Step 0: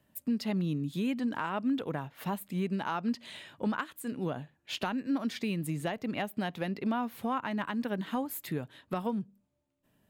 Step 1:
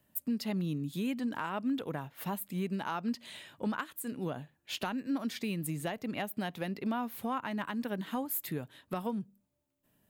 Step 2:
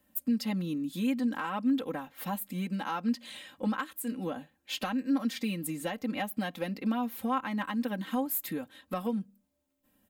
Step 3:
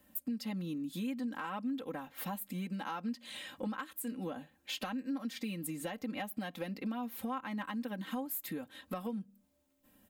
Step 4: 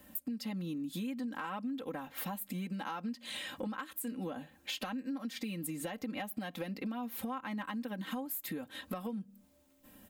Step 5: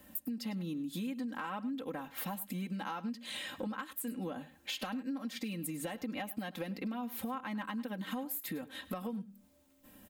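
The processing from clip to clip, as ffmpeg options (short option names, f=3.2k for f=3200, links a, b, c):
-af "highshelf=f=8.8k:g=10.5,volume=-2.5dB"
-af "aecho=1:1:3.8:0.84"
-af "acompressor=threshold=-45dB:ratio=2.5,volume=4dB"
-af "acompressor=threshold=-48dB:ratio=2.5,volume=8dB"
-af "aecho=1:1:103:0.133"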